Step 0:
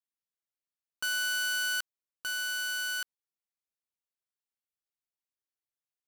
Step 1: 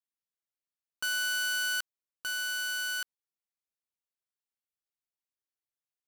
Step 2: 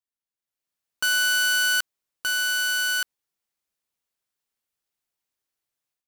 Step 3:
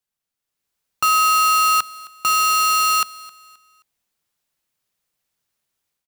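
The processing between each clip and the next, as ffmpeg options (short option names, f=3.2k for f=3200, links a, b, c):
-af anull
-af "dynaudnorm=f=370:g=3:m=12dB,volume=-3dB"
-af "asoftclip=type=hard:threshold=-20.5dB,afreqshift=-220,aecho=1:1:264|528|792:0.0944|0.0321|0.0109,volume=7.5dB"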